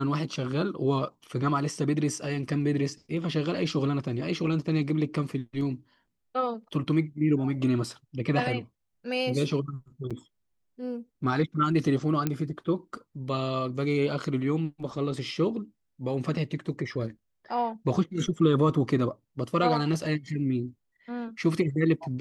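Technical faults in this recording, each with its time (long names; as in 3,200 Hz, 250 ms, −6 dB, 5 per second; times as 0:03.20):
0:10.10–0:10.11: drop-out 6.5 ms
0:12.27: click −13 dBFS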